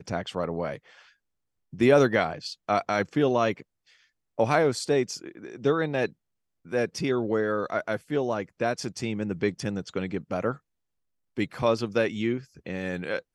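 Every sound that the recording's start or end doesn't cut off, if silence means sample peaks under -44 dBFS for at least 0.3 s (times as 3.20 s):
1.73–3.62 s
4.38–6.12 s
6.66–10.57 s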